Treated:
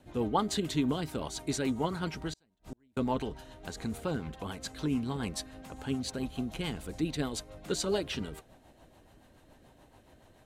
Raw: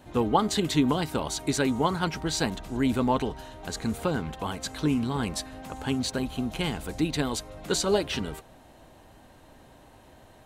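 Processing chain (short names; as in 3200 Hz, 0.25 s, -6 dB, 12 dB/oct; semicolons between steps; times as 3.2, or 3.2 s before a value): rotary speaker horn 7 Hz; 2.33–2.97 flipped gate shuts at -27 dBFS, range -38 dB; gain -4 dB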